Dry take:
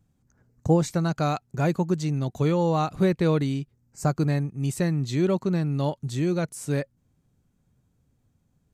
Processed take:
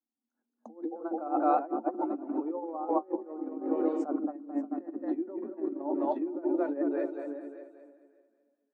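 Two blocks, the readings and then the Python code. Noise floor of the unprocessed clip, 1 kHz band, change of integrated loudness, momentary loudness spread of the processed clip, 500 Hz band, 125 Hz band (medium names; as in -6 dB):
-70 dBFS, -1.0 dB, -7.0 dB, 10 LU, -5.5 dB, under -40 dB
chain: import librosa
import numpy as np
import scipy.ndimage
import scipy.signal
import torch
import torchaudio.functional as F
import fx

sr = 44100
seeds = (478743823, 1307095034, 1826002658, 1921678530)

p1 = fx.hum_notches(x, sr, base_hz=50, count=9)
p2 = fx.level_steps(p1, sr, step_db=10)
p3 = p1 + (p2 * 10.0 ** (-3.0 / 20.0))
p4 = fx.echo_split(p3, sr, split_hz=470.0, low_ms=153, high_ms=219, feedback_pct=52, wet_db=-4)
p5 = fx.env_lowpass_down(p4, sr, base_hz=1500.0, full_db=-19.0)
p6 = fx.high_shelf(p5, sr, hz=5000.0, db=-7.5)
p7 = fx.echo_feedback(p6, sr, ms=579, feedback_pct=23, wet_db=-10)
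p8 = fx.over_compress(p7, sr, threshold_db=-24.0, ratio=-0.5)
p9 = scipy.signal.sosfilt(scipy.signal.cheby1(6, 6, 220.0, 'highpass', fs=sr, output='sos'), p8)
y = fx.spectral_expand(p9, sr, expansion=1.5)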